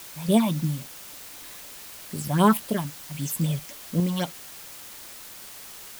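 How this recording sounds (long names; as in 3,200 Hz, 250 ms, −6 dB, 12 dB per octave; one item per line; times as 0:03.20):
phaser sweep stages 6, 3.8 Hz, lowest notch 380–1,900 Hz
sample-and-hold tremolo
a quantiser's noise floor 8 bits, dither triangular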